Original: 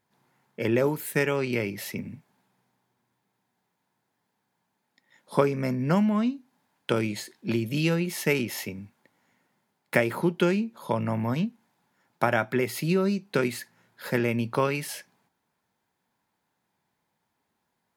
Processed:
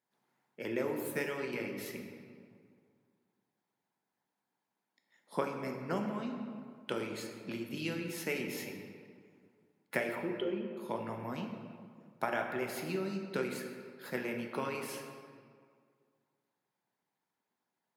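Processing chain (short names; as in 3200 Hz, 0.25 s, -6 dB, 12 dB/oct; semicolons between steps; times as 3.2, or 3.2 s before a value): 10.15–10.77 formant sharpening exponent 2; HPF 170 Hz 12 dB/oct; reverb RT60 2.0 s, pre-delay 14 ms, DRR 1.5 dB; harmonic-percussive split harmonic -6 dB; gain -9 dB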